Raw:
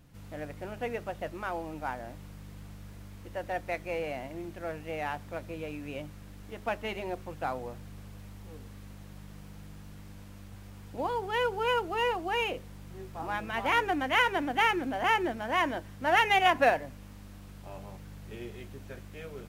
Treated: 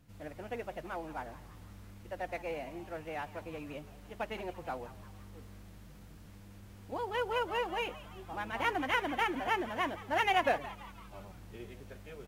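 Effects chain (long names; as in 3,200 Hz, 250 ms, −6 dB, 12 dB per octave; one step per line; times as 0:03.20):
phase-vocoder stretch with locked phases 0.63×
echo with shifted repeats 169 ms, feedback 52%, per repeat +140 Hz, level −16.5 dB
level −4 dB
AAC 64 kbit/s 48,000 Hz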